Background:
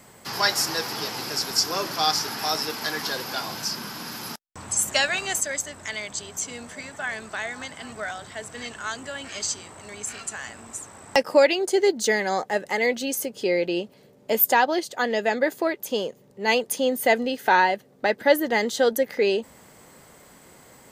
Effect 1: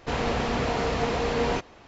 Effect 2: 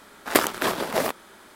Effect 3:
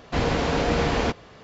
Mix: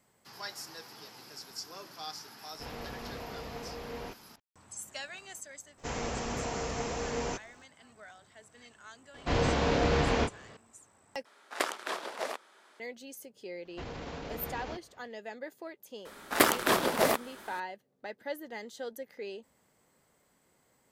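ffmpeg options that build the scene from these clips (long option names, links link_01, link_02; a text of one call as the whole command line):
ffmpeg -i bed.wav -i cue0.wav -i cue1.wav -i cue2.wav -filter_complex "[1:a]asplit=2[link_01][link_02];[3:a]asplit=2[link_03][link_04];[2:a]asplit=2[link_05][link_06];[0:a]volume=-19.5dB[link_07];[link_02]aexciter=amount=5.9:drive=3.4:freq=5700[link_08];[link_03]asplit=2[link_09][link_10];[link_10]adelay=28,volume=-5dB[link_11];[link_09][link_11]amix=inputs=2:normalize=0[link_12];[link_05]highpass=460,lowpass=8000[link_13];[link_04]alimiter=limit=-16.5dB:level=0:latency=1:release=30[link_14];[link_06]asoftclip=type=tanh:threshold=-9.5dB[link_15];[link_07]asplit=2[link_16][link_17];[link_16]atrim=end=11.254[link_18];[link_13]atrim=end=1.55,asetpts=PTS-STARTPTS,volume=-10dB[link_19];[link_17]atrim=start=12.796[link_20];[link_01]atrim=end=1.87,asetpts=PTS-STARTPTS,volume=-16dB,afade=type=in:duration=0.004:curve=hsin,afade=type=out:start_time=1.866:duration=0.004:curve=hsin,adelay=2530[link_21];[link_08]atrim=end=1.87,asetpts=PTS-STARTPTS,volume=-9dB,afade=type=in:duration=0.02,afade=type=out:start_time=1.85:duration=0.02,adelay=254457S[link_22];[link_12]atrim=end=1.43,asetpts=PTS-STARTPTS,volume=-5.5dB,afade=type=in:duration=0.004:curve=hsin,afade=type=out:start_time=1.426:duration=0.004:curve=hsin,adelay=403074S[link_23];[link_14]atrim=end=1.43,asetpts=PTS-STARTPTS,volume=-16dB,afade=type=in:duration=0.004:curve=hsin,afade=type=out:start_time=1.426:duration=0.004:curve=hsin,adelay=13650[link_24];[link_15]atrim=end=1.55,asetpts=PTS-STARTPTS,volume=-1dB,afade=type=in:duration=0.004:curve=hsin,afade=type=out:start_time=1.546:duration=0.004:curve=hsin,adelay=16050[link_25];[link_18][link_19]acrossfade=duration=0.004:curve1=hsin:curve2=hsin[link_26];[link_26][link_20]acrossfade=duration=0.004:curve1=hsin:curve2=hsin[link_27];[link_27][link_21][link_22][link_23][link_24][link_25]amix=inputs=6:normalize=0" out.wav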